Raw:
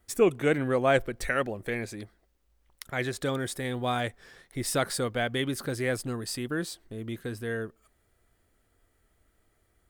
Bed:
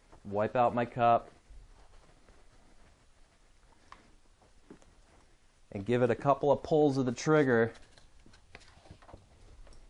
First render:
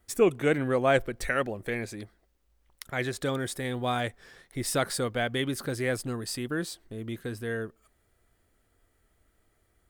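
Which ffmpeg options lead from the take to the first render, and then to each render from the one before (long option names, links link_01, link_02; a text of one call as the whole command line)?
ffmpeg -i in.wav -af anull out.wav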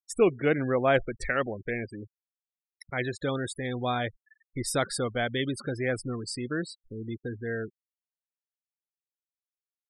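ffmpeg -i in.wav -af "afftfilt=real='re*gte(hypot(re,im),0.02)':imag='im*gte(hypot(re,im),0.02)':win_size=1024:overlap=0.75" out.wav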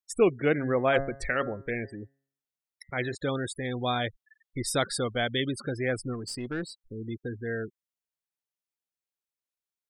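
ffmpeg -i in.wav -filter_complex "[0:a]asettb=1/sr,asplit=3[link_01][link_02][link_03];[link_01]atrim=end=0.524[link_04];[link_02]atrim=start=0.52:end=3.15,asetpts=PTS-STARTPTS,afade=type=in:duration=0.004:curve=qsin,afade=type=out:start_time=2.626:duration=0.004:curve=qsin,bandreject=frequency=137.1:width_type=h:width=4,bandreject=frequency=274.2:width_type=h:width=4,bandreject=frequency=411.3:width_type=h:width=4,bandreject=frequency=548.4:width_type=h:width=4,bandreject=frequency=685.5:width_type=h:width=4,bandreject=frequency=822.6:width_type=h:width=4,bandreject=frequency=959.7:width_type=h:width=4,bandreject=frequency=1096.8:width_type=h:width=4,bandreject=frequency=1233.9:width_type=h:width=4,bandreject=frequency=1371:width_type=h:width=4,bandreject=frequency=1508.1:width_type=h:width=4,bandreject=frequency=1645.2:width_type=h:width=4,bandreject=frequency=1782.3:width_type=h:width=4,bandreject=frequency=1919.4:width_type=h:width=4,bandreject=frequency=2056.5:width_type=h:width=4[link_05];[link_03]atrim=start=3.146[link_06];[link_04][link_05]acrossfade=duration=0.004:curve1=hsin:curve2=qsin[link_07];[link_07][link_06]acrossfade=duration=0.004:curve1=qsin:curve2=hsin,asettb=1/sr,asplit=3[link_08][link_09][link_10];[link_08]atrim=end=3.774[link_11];[link_09]atrim=start=3.77:end=5.4,asetpts=PTS-STARTPTS,afade=type=in:duration=0.004:curve=qsin,afade=type=out:start_time=1.626:duration=0.004:curve=qsin,equalizer=frequency=3400:width=2.4:gain=5[link_12];[link_10]atrim=start=5.396[link_13];[link_11][link_12]acrossfade=duration=0.004:curve1=hsin:curve2=qsin[link_14];[link_14][link_13]acrossfade=duration=0.004:curve1=qsin:curve2=hsin,asplit=3[link_15][link_16][link_17];[link_15]afade=type=out:start_time=6.13:duration=0.02[link_18];[link_16]aeval=exprs='(tanh(17.8*val(0)+0.25)-tanh(0.25))/17.8':channel_layout=same,afade=type=in:start_time=6.13:duration=0.02,afade=type=out:start_time=6.85:duration=0.02[link_19];[link_17]afade=type=in:start_time=6.85:duration=0.02[link_20];[link_18][link_19][link_20]amix=inputs=3:normalize=0" out.wav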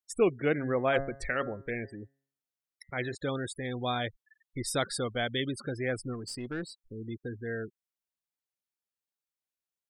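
ffmpeg -i in.wav -af "volume=-3dB" out.wav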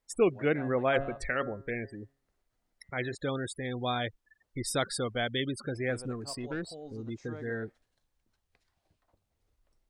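ffmpeg -i in.wav -i bed.wav -filter_complex "[1:a]volume=-20dB[link_01];[0:a][link_01]amix=inputs=2:normalize=0" out.wav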